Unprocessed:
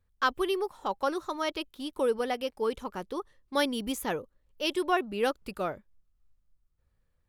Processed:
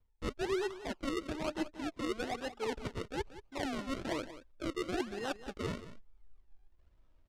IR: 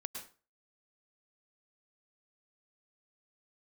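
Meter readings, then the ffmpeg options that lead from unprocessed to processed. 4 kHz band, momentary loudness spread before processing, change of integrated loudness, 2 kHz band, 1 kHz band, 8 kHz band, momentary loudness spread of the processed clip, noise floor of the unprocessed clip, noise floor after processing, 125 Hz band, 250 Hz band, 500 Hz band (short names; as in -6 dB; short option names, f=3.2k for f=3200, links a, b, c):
-8.5 dB, 9 LU, -7.0 dB, -7.5 dB, -10.5 dB, -5.5 dB, 6 LU, -74 dBFS, -69 dBFS, +4.0 dB, -4.0 dB, -7.5 dB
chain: -filter_complex "[0:a]aecho=1:1:3.2:0.37,areverse,acompressor=threshold=-40dB:ratio=5,areverse,acrusher=samples=37:mix=1:aa=0.000001:lfo=1:lforange=37:lforate=1.1,acrossover=split=2200[a][b];[a]flanger=delay=2.1:depth=1.2:regen=62:speed=0.34:shape=triangular[c];[b]adynamicsmooth=sensitivity=7.5:basefreq=5.2k[d];[c][d]amix=inputs=2:normalize=0,aecho=1:1:181:0.2,volume=8.5dB"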